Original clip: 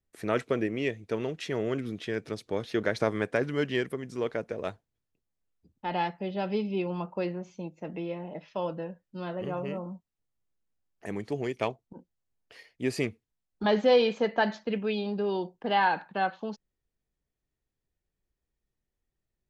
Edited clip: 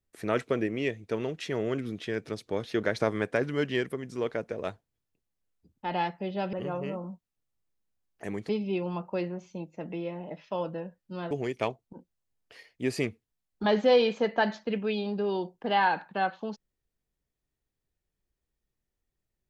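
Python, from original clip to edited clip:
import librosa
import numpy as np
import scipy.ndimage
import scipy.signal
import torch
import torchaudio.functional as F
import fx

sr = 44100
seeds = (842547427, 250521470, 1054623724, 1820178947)

y = fx.edit(x, sr, fx.move(start_s=9.35, length_s=1.96, to_s=6.53), tone=tone)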